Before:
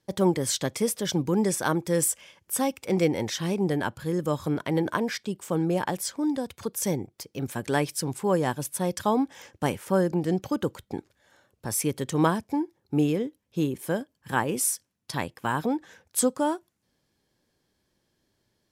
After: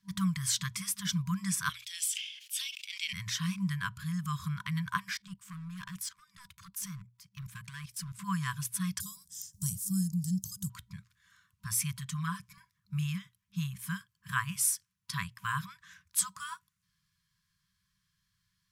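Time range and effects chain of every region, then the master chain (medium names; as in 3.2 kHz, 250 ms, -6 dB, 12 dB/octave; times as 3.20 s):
1.69–3.13 s: ladder high-pass 2.4 kHz, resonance 35% + peaking EQ 3.1 kHz +11.5 dB 1.7 oct + decay stretcher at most 64 dB/s
5.14–8.19 s: level held to a coarse grid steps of 17 dB + overload inside the chain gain 30 dB
9.00–10.70 s: FFT filter 440 Hz 0 dB, 1.2 kHz -27 dB, 2.4 kHz -26 dB, 5.2 kHz +5 dB, 7.7 kHz +12 dB + tape noise reduction on one side only encoder only
11.98–12.58 s: comb 6.8 ms, depth 82% + compression 1.5:1, threshold -40 dBFS
whole clip: FFT band-reject 200–970 Hz; hum notches 60/120 Hz; trim -2.5 dB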